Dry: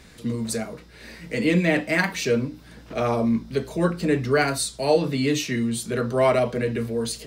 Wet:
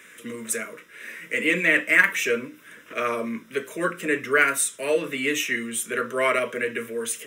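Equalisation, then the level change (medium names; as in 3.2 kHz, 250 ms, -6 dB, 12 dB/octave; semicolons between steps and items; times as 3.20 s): high-pass 570 Hz 12 dB/octave; static phaser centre 1.9 kHz, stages 4; +7.5 dB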